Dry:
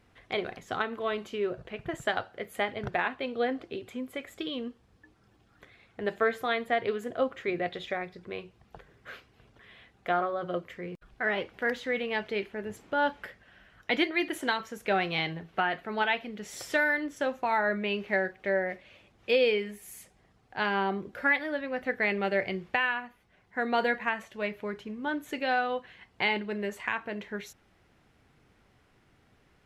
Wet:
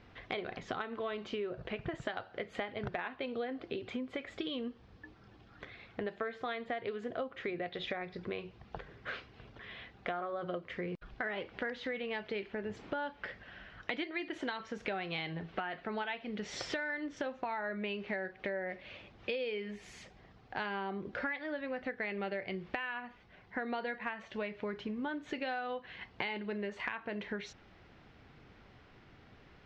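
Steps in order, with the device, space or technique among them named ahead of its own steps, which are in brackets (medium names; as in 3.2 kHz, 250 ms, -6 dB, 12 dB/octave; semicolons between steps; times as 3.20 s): low-pass 5.1 kHz 24 dB/octave; serial compression, leveller first (compression 1.5:1, threshold -37 dBFS, peak gain reduction 6 dB; compression 5:1, threshold -41 dBFS, peak gain reduction 13.5 dB); trim +5.5 dB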